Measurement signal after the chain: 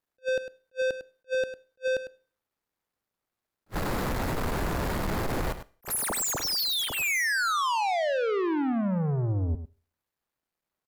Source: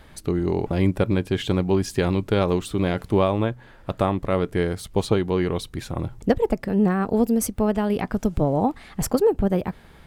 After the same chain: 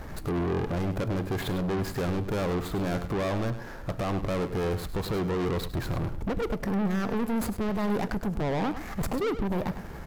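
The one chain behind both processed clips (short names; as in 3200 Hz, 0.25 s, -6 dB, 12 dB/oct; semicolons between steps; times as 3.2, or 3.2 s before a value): median filter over 15 samples; bell 13000 Hz +7.5 dB 0.41 oct; in parallel at +3 dB: compressor, threshold -27 dBFS; on the sum: limiter -11.5 dBFS; soft clip -28 dBFS; on a send: echo 0.102 s -11.5 dB; on the sum: Schroeder reverb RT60 0.45 s, combs from 27 ms, DRR 19.5 dB; attack slew limiter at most 570 dB/s; gain +2 dB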